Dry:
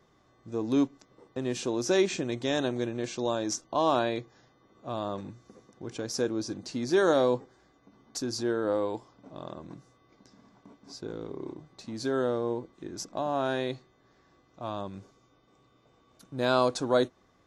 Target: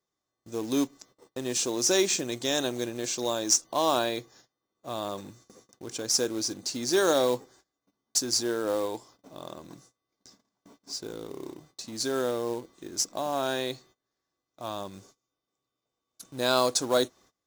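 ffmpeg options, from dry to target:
-af "bass=f=250:g=-5,treble=f=4k:g=14,acrusher=bits=4:mode=log:mix=0:aa=0.000001,agate=range=-22dB:threshold=-55dB:ratio=16:detection=peak"

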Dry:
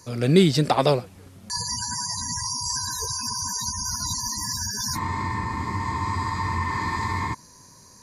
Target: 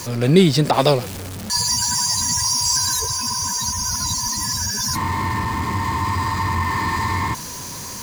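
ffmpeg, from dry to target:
-filter_complex "[0:a]aeval=exprs='val(0)+0.5*0.0316*sgn(val(0))':c=same,asettb=1/sr,asplit=3[a][b][c];[a]atrim=end=0.714[d];[b]atrim=start=0.71:end=3,asetpts=PTS-STARTPTS,afade=t=in:d=0.004:c=qsin,afade=t=out:st=2.286:d=0.004:c=qsin,adynamicequalizer=threshold=0.0158:dfrequency=2500:dqfactor=0.7:tfrequency=2500:tqfactor=0.7:attack=5:release=100:ratio=0.375:range=2:mode=boostabove:tftype=highshelf[e];[c]atrim=start=2.996[f];[d][e]acrossfade=d=0.004:c1=hsin:c2=qsin[g];[g][f]acrossfade=d=0.004:c1=qsin:c2=hsin,volume=3dB"

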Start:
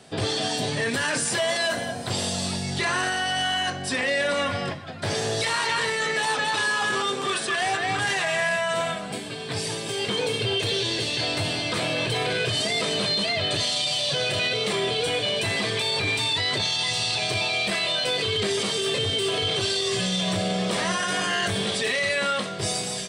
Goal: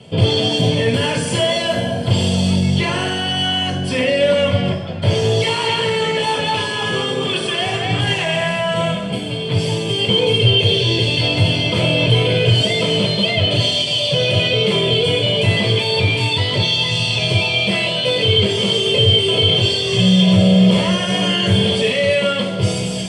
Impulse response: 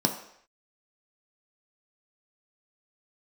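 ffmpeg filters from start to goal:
-filter_complex "[1:a]atrim=start_sample=2205,asetrate=25578,aresample=44100[a];[0:a][a]afir=irnorm=-1:irlink=0,volume=-8.5dB"

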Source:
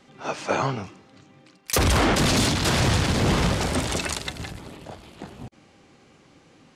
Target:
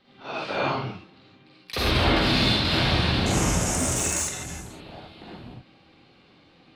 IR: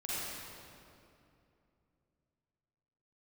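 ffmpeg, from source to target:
-filter_complex "[0:a]asetnsamples=n=441:p=0,asendcmd='3.26 highshelf g 7;4.66 highshelf g -9',highshelf=f=5.3k:t=q:w=3:g=-9.5,asoftclip=type=hard:threshold=-11.5dB[a];[1:a]atrim=start_sample=2205,atrim=end_sample=6615[b];[a][b]afir=irnorm=-1:irlink=0,volume=-3dB"

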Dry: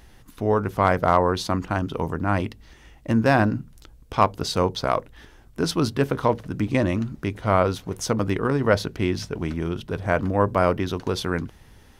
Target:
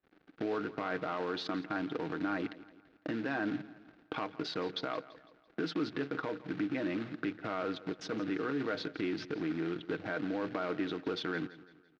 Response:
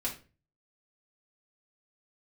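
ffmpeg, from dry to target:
-filter_complex "[0:a]anlmdn=6.31,agate=range=-33dB:threshold=-45dB:ratio=3:detection=peak,aecho=1:1:6.4:0.38,asplit=2[a][b];[b]acontrast=72,volume=1.5dB[c];[a][c]amix=inputs=2:normalize=0,alimiter=limit=-8.5dB:level=0:latency=1:release=59,acompressor=threshold=-39dB:ratio=2.5,acrusher=bits=3:mode=log:mix=0:aa=0.000001,highpass=280,equalizer=f=300:t=q:w=4:g=6,equalizer=f=570:t=q:w=4:g=-5,equalizer=f=990:t=q:w=4:g=-8,equalizer=f=1.5k:t=q:w=4:g=5,equalizer=f=3.1k:t=q:w=4:g=-3,lowpass=f=3.9k:w=0.5412,lowpass=f=3.9k:w=1.3066,asplit=2[d][e];[e]aecho=0:1:168|336|504|672:0.133|0.0587|0.0258|0.0114[f];[d][f]amix=inputs=2:normalize=0"

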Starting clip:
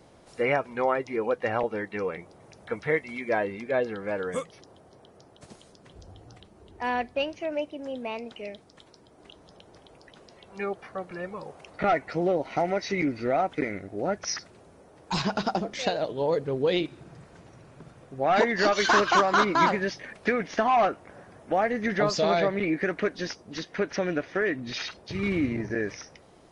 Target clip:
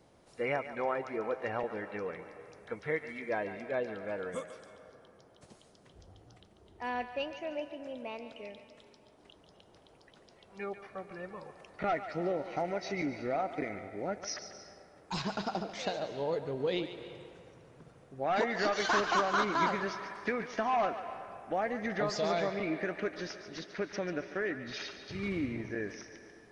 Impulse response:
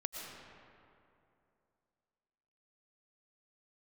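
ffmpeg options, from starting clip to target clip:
-filter_complex "[0:a]asplit=2[a][b];[1:a]atrim=start_sample=2205,lowshelf=f=350:g=-11.5,adelay=142[c];[b][c]afir=irnorm=-1:irlink=0,volume=-8dB[d];[a][d]amix=inputs=2:normalize=0,volume=-8dB"

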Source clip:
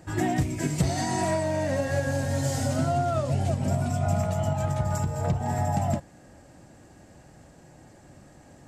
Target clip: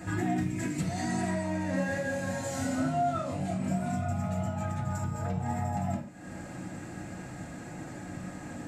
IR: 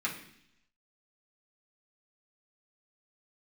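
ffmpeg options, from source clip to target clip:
-filter_complex "[0:a]acompressor=threshold=-43dB:ratio=4,asettb=1/sr,asplit=3[a][b][c];[a]atrim=end=1.704[d];[b]atrim=start=1.7:end=3.96,asetpts=PTS-STARTPTS,afade=t=in:d=0.004:c=qsin,afade=t=out:st=2.256:d=0.004:c=qsin,asplit=2[e][f];[f]adelay=27,volume=-2dB[g];[e][g]amix=inputs=2:normalize=0,atrim=end_sample=99666[h];[c]atrim=start=3.956[i];[d][h]acrossfade=d=0.004:c1=hsin:c2=qsin[j];[j][i]acrossfade=d=0.004:c1=qsin:c2=hsin[k];[1:a]atrim=start_sample=2205,afade=t=out:st=0.19:d=0.01,atrim=end_sample=8820[l];[k][l]afir=irnorm=-1:irlink=0,volume=6dB"

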